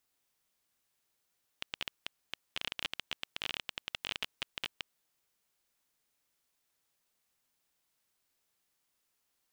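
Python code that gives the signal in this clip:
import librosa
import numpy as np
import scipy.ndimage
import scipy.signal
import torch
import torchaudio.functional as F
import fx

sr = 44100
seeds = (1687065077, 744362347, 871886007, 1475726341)

y = fx.geiger_clicks(sr, seeds[0], length_s=3.22, per_s=17.0, level_db=-17.5)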